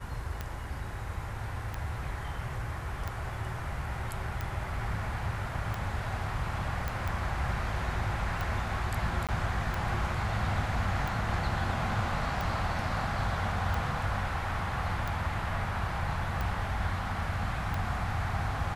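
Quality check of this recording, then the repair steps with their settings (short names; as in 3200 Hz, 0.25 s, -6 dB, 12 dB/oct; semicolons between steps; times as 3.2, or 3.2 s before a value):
tick 45 rpm -20 dBFS
6.88 pop
9.27–9.29 gap 17 ms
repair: de-click; interpolate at 9.27, 17 ms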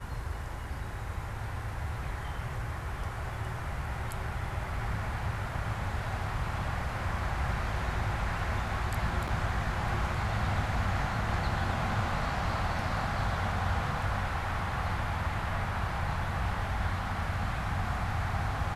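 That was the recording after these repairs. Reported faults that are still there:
6.88 pop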